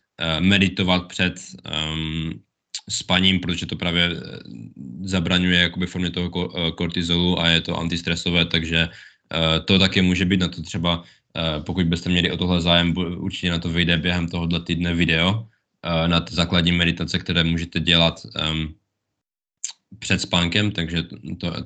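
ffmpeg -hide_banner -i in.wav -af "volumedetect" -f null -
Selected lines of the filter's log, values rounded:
mean_volume: -22.0 dB
max_volume: -2.0 dB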